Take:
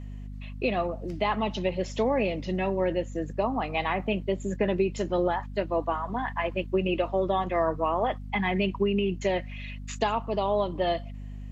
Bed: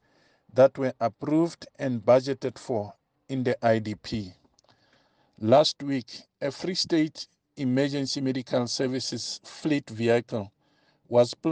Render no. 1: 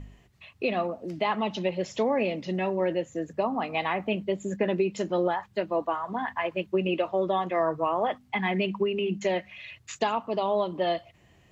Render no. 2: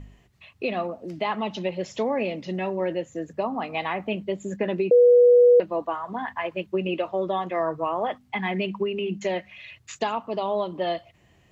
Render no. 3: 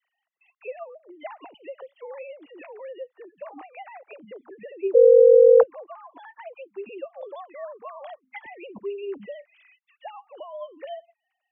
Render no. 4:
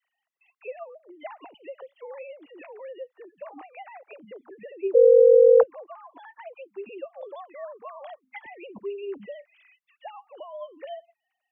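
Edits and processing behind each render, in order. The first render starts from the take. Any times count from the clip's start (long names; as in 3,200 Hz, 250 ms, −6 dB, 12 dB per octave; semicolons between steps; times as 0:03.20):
hum removal 50 Hz, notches 5
0:04.91–0:05.60: beep over 487 Hz −11 dBFS
three sine waves on the formant tracks; all-pass dispersion lows, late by 51 ms, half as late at 660 Hz
level −1.5 dB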